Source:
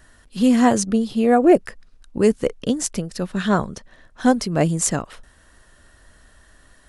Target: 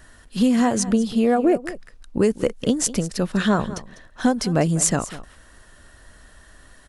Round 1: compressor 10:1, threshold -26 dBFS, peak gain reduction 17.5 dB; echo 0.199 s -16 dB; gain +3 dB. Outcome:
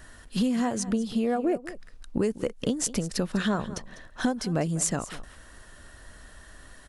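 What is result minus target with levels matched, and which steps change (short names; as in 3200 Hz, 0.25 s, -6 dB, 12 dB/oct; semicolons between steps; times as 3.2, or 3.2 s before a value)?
compressor: peak gain reduction +8 dB
change: compressor 10:1, threshold -17 dBFS, peak gain reduction 9.5 dB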